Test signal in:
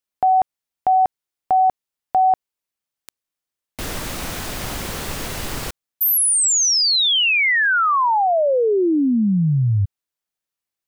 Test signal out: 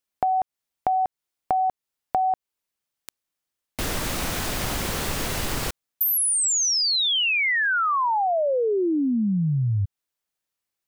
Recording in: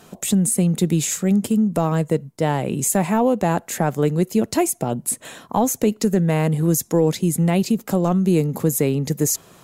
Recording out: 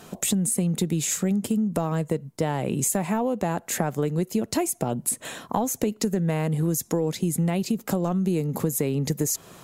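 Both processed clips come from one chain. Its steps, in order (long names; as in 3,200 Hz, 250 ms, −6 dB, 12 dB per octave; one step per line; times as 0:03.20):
downward compressor 5 to 1, threshold −23 dBFS
level +1.5 dB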